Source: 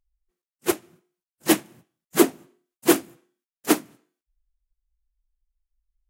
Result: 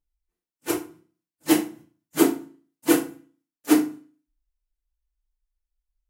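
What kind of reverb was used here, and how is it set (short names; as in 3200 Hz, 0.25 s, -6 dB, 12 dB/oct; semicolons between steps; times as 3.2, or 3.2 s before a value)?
FDN reverb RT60 0.37 s, low-frequency decay 1.2×, high-frequency decay 0.8×, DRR -3 dB; gain -7 dB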